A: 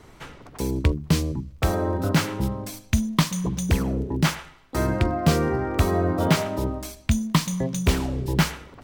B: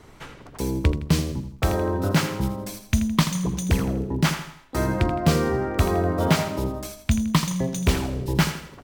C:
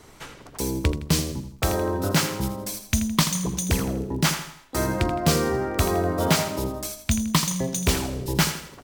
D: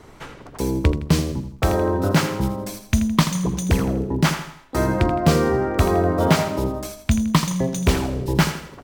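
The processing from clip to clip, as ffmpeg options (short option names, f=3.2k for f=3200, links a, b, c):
-af "aecho=1:1:82|164|246|328:0.282|0.116|0.0474|0.0194"
-af "bass=f=250:g=-3,treble=f=4k:g=7"
-af "highshelf=f=3.2k:g=-11,volume=5dB"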